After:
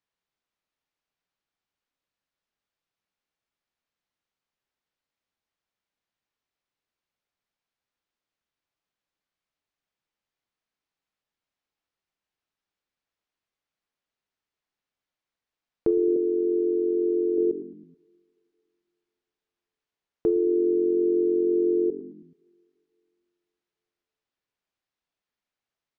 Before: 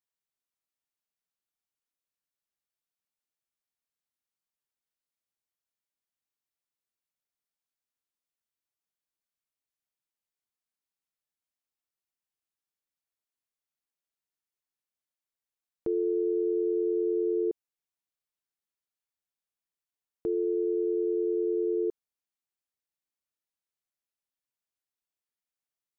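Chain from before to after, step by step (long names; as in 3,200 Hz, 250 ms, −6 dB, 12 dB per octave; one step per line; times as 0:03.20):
high-frequency loss of the air 140 metres
on a send: echo with shifted repeats 107 ms, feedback 48%, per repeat −46 Hz, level −17 dB
on the sum: treble cut that deepens with the level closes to 430 Hz, closed at −26 dBFS
0:16.16–0:17.38: Bessel high-pass filter 310 Hz, order 2
coupled-rooms reverb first 0.74 s, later 2.7 s, from −19 dB, DRR 14 dB
level +8.5 dB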